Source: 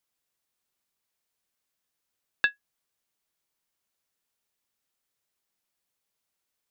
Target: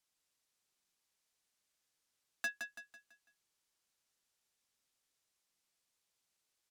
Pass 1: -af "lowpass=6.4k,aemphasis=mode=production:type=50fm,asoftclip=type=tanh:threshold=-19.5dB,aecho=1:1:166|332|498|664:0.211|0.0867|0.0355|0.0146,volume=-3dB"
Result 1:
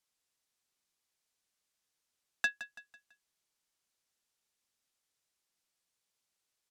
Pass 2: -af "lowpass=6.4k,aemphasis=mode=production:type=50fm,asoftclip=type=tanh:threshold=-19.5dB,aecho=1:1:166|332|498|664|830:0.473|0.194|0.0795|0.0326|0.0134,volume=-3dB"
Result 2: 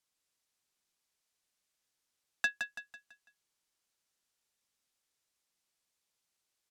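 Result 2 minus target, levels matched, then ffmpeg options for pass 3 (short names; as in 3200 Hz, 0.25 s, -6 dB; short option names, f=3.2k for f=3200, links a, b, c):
soft clip: distortion -6 dB
-af "lowpass=6.4k,aemphasis=mode=production:type=50fm,asoftclip=type=tanh:threshold=-29.5dB,aecho=1:1:166|332|498|664|830:0.473|0.194|0.0795|0.0326|0.0134,volume=-3dB"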